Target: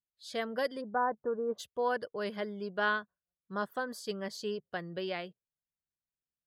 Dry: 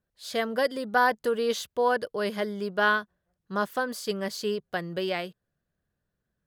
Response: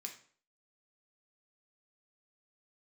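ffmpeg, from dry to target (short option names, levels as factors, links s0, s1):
-filter_complex "[0:a]asplit=3[s0][s1][s2];[s0]afade=t=out:st=0.8:d=0.02[s3];[s1]lowpass=f=1300:w=0.5412,lowpass=f=1300:w=1.3066,afade=t=in:st=0.8:d=0.02,afade=t=out:st=1.58:d=0.02[s4];[s2]afade=t=in:st=1.58:d=0.02[s5];[s3][s4][s5]amix=inputs=3:normalize=0,afftdn=nr=17:nf=-49,volume=0.447"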